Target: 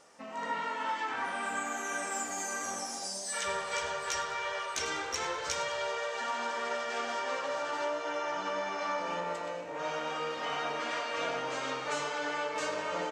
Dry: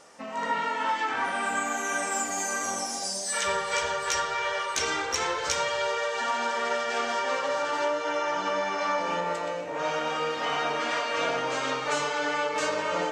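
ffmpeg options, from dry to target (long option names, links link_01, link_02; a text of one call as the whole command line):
ffmpeg -i in.wav -filter_complex "[0:a]asplit=6[link_01][link_02][link_03][link_04][link_05][link_06];[link_02]adelay=100,afreqshift=70,volume=-15dB[link_07];[link_03]adelay=200,afreqshift=140,volume=-20.8dB[link_08];[link_04]adelay=300,afreqshift=210,volume=-26.7dB[link_09];[link_05]adelay=400,afreqshift=280,volume=-32.5dB[link_10];[link_06]adelay=500,afreqshift=350,volume=-38.4dB[link_11];[link_01][link_07][link_08][link_09][link_10][link_11]amix=inputs=6:normalize=0,volume=-6.5dB" out.wav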